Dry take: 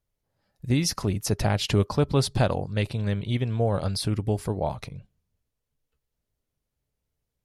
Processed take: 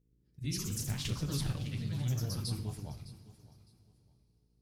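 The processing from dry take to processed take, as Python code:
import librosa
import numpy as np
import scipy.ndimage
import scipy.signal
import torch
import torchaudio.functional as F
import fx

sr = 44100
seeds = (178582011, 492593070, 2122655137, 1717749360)

p1 = fx.dmg_buzz(x, sr, base_hz=60.0, harmonics=8, level_db=-62.0, tilt_db=-1, odd_only=False)
p2 = fx.level_steps(p1, sr, step_db=18)
p3 = p1 + (p2 * 10.0 ** (-2.5 / 20.0))
p4 = fx.stretch_grains(p3, sr, factor=0.62, grain_ms=141.0)
p5 = fx.echo_pitch(p4, sr, ms=116, semitones=2, count=3, db_per_echo=-3.0)
p6 = fx.tone_stack(p5, sr, knobs='6-0-2')
p7 = p6 + fx.echo_feedback(p6, sr, ms=609, feedback_pct=24, wet_db=-18.0, dry=0)
p8 = fx.rev_double_slope(p7, sr, seeds[0], early_s=0.51, late_s=4.0, knee_db=-19, drr_db=7.0)
y = p8 * 10.0 ** (3.0 / 20.0)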